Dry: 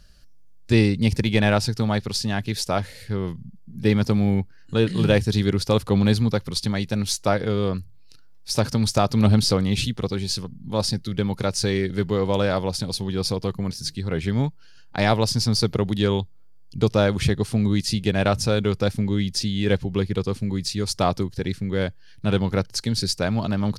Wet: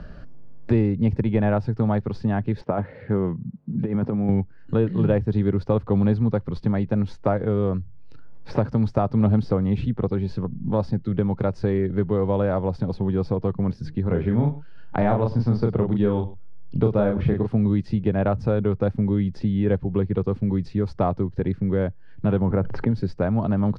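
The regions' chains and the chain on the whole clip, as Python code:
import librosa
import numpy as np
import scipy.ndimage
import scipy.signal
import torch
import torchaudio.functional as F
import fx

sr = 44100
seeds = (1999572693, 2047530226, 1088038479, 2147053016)

y = fx.chain(x, sr, fx.bandpass_edges(low_hz=140.0, high_hz=2400.0),
    fx.over_compress(threshold_db=-24.0, ratio=-0.5), at=(2.61, 4.29))
y = fx.chain(y, sr, fx.lowpass(hz=5000.0, slope=12),
    fx.doubler(ms=34.0, db=-4.0),
    fx.echo_single(ms=102, db=-19.0), at=(14.02, 17.48))
y = fx.chain(y, sr, fx.lowpass(hz=2100.0, slope=12),
    fx.env_flatten(amount_pct=70), at=(22.41, 22.91))
y = scipy.signal.sosfilt(scipy.signal.butter(2, 1100.0, 'lowpass', fs=sr, output='sos'), y)
y = fx.band_squash(y, sr, depth_pct=70)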